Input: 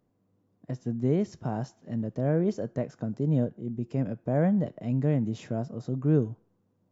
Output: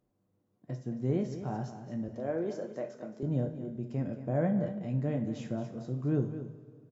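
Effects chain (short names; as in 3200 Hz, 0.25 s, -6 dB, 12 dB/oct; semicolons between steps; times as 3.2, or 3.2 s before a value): 2.08–3.23 HPF 320 Hz 12 dB/oct; echo 0.224 s -11.5 dB; two-slope reverb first 0.4 s, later 2.5 s, from -16 dB, DRR 4.5 dB; gain -5.5 dB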